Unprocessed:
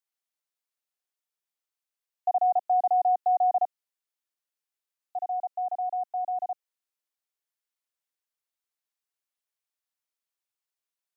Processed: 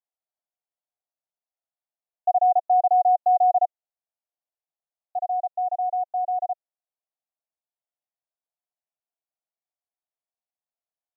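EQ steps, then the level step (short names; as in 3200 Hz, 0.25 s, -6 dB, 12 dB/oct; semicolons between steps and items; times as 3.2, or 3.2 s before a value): band-pass 690 Hz, Q 3.9; +5.5 dB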